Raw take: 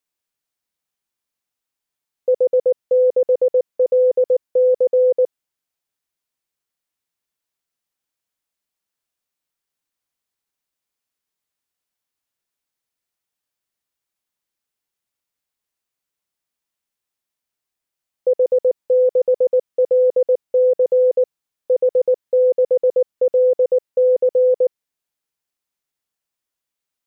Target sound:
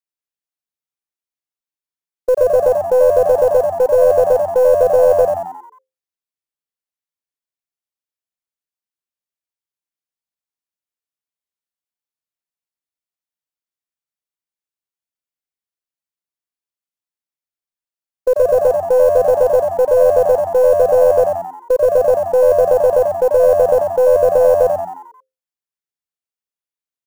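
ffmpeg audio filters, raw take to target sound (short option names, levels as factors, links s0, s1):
-filter_complex "[0:a]agate=range=0.158:threshold=0.0891:ratio=16:detection=peak,acontrast=41,acrusher=bits=7:mode=log:mix=0:aa=0.000001,aeval=exprs='0.531*(cos(1*acos(clip(val(0)/0.531,-1,1)))-cos(1*PI/2))+0.0335*(cos(2*acos(clip(val(0)/0.531,-1,1)))-cos(2*PI/2))':c=same,asplit=2[s0][s1];[s1]asplit=6[s2][s3][s4][s5][s6][s7];[s2]adelay=89,afreqshift=87,volume=0.562[s8];[s3]adelay=178,afreqshift=174,volume=0.282[s9];[s4]adelay=267,afreqshift=261,volume=0.141[s10];[s5]adelay=356,afreqshift=348,volume=0.07[s11];[s6]adelay=445,afreqshift=435,volume=0.0351[s12];[s7]adelay=534,afreqshift=522,volume=0.0176[s13];[s8][s9][s10][s11][s12][s13]amix=inputs=6:normalize=0[s14];[s0][s14]amix=inputs=2:normalize=0,volume=0.794"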